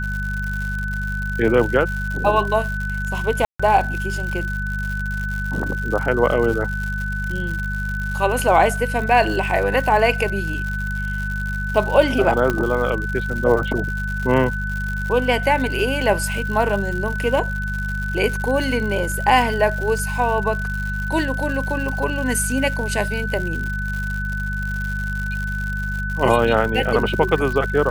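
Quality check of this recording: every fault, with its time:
crackle 140/s -26 dBFS
hum 50 Hz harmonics 4 -26 dBFS
tone 1500 Hz -26 dBFS
3.45–3.6 gap 0.145 s
12.5 pop -8 dBFS

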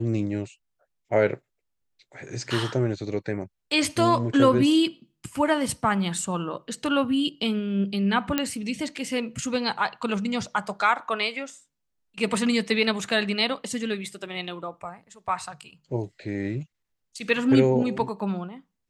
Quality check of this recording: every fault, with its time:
8.38 pop -8 dBFS

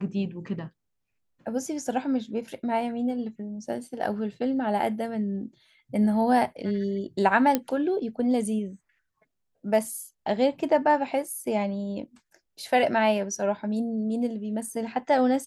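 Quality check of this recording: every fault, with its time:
7.55 pop -9 dBFS

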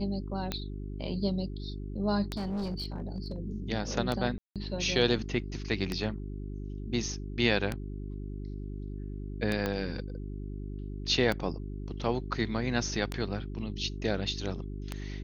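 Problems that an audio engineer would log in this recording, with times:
hum 50 Hz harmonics 8 -38 dBFS
tick 33 1/3 rpm -16 dBFS
2.33–3.38 clipped -30 dBFS
4.38–4.56 gap 0.177 s
9.66 pop -16 dBFS

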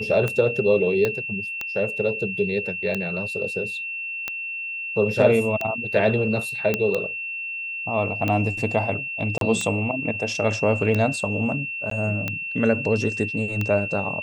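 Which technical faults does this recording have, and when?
tick 45 rpm -12 dBFS
tone 2700 Hz -28 dBFS
1.05 pop -10 dBFS
6.74 pop -8 dBFS
9.38–9.41 gap 32 ms
11.9–11.91 gap 13 ms

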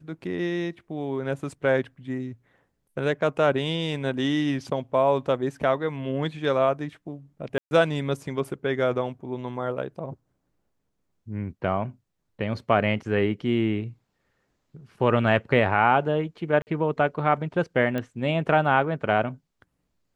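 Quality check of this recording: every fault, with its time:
7.58–7.71 gap 0.13 s
16.62–16.67 gap 49 ms
17.98 pop -17 dBFS

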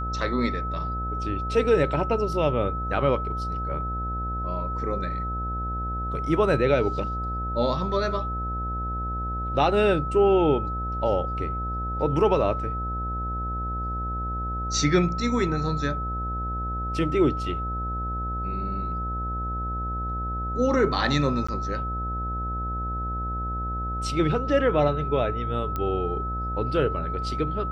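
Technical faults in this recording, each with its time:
buzz 60 Hz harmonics 14 -31 dBFS
tone 1300 Hz -30 dBFS
21.47–21.48 gap 15 ms
25.76 pop -16 dBFS

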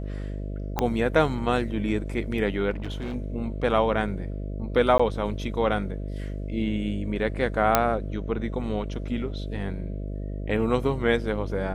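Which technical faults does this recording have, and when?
buzz 50 Hz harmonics 13 -32 dBFS
0.79 pop -10 dBFS
2.7–3.16 clipped -28 dBFS
4.98–5 gap 15 ms
7.75 pop -2 dBFS

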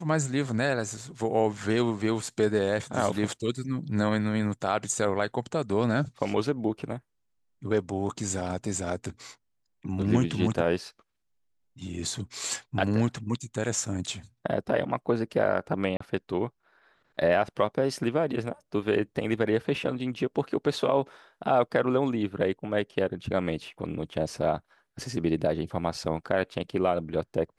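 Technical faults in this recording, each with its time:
15.97–16 gap 34 ms

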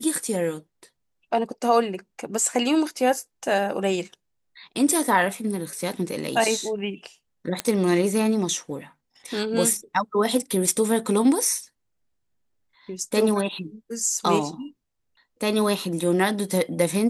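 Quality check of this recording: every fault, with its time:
7.6 pop -9 dBFS

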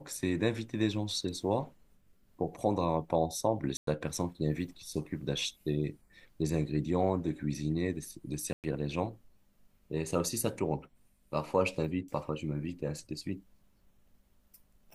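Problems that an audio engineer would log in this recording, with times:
3.77–3.87 gap 0.103 s
8.53–8.64 gap 0.108 s

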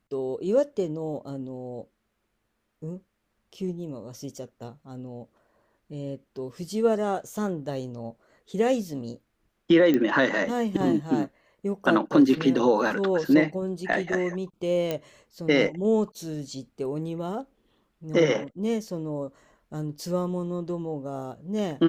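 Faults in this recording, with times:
9.94 pop -13 dBFS
14.91 pop -14 dBFS

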